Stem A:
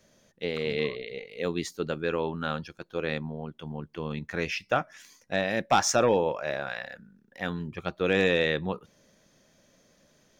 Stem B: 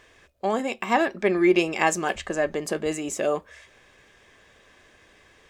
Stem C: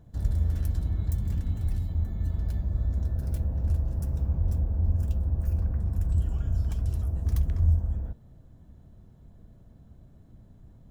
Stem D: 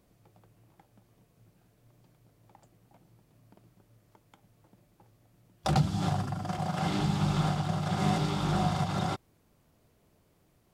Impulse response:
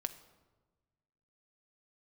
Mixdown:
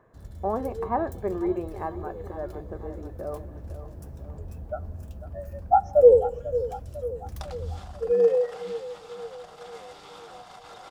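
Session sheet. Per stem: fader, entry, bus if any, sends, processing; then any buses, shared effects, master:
+3.0 dB, 0.00 s, send -5 dB, echo send -10.5 dB, spectral contrast expander 4:1
-1.0 dB, 0.00 s, send -18 dB, echo send -24 dB, low-pass 1.2 kHz 24 dB/octave; auto duck -18 dB, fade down 2.00 s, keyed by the first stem
-8.5 dB, 0.00 s, no send, no echo send, none
-5.5 dB, 1.75 s, no send, no echo send, compression 6:1, threshold -36 dBFS, peak gain reduction 15 dB; high-pass 490 Hz 12 dB/octave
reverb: on, RT60 1.3 s, pre-delay 5 ms
echo: feedback delay 497 ms, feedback 54%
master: bass shelf 130 Hz -11.5 dB; level rider gain up to 4 dB

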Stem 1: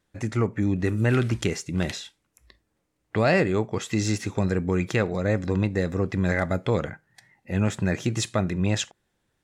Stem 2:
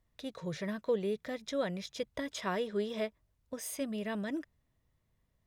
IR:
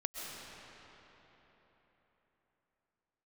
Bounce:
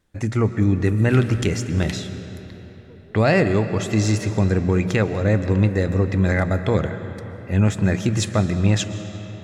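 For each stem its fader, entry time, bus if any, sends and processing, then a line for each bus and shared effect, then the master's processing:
0.0 dB, 0.00 s, send -7.5 dB, bass shelf 140 Hz +8.5 dB; hum notches 60/120/180 Hz
-19.0 dB, 2.00 s, no send, harmonic-percussive separation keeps harmonic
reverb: on, RT60 4.1 s, pre-delay 90 ms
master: none

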